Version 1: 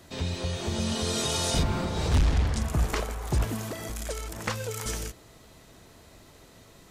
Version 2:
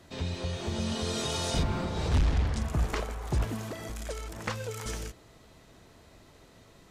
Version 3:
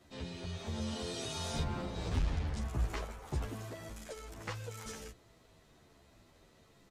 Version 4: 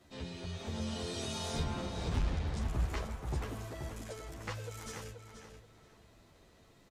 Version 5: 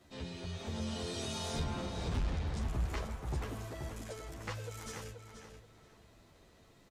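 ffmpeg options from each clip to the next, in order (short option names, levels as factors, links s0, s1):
-af "highshelf=f=7500:g=-8.5,volume=0.75"
-filter_complex "[0:a]asplit=2[s0][s1];[s1]adelay=11,afreqshift=-1.2[s2];[s0][s2]amix=inputs=2:normalize=1,volume=0.596"
-filter_complex "[0:a]asplit=2[s0][s1];[s1]adelay=481,lowpass=f=4400:p=1,volume=0.447,asplit=2[s2][s3];[s3]adelay=481,lowpass=f=4400:p=1,volume=0.27,asplit=2[s4][s5];[s5]adelay=481,lowpass=f=4400:p=1,volume=0.27[s6];[s0][s2][s4][s6]amix=inputs=4:normalize=0"
-af "asoftclip=type=tanh:threshold=0.0562"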